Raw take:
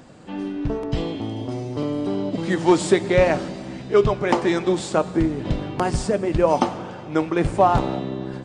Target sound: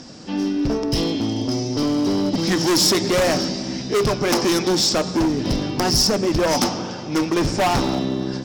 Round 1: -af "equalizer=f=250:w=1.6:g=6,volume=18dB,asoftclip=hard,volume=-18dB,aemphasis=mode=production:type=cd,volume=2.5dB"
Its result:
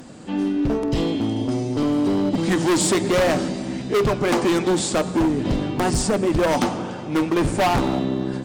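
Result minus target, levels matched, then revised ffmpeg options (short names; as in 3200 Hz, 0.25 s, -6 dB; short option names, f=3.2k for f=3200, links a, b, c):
4000 Hz band -7.5 dB
-af "lowpass=f=5.4k:t=q:w=8.6,equalizer=f=250:w=1.6:g=6,volume=18dB,asoftclip=hard,volume=-18dB,aemphasis=mode=production:type=cd,volume=2.5dB"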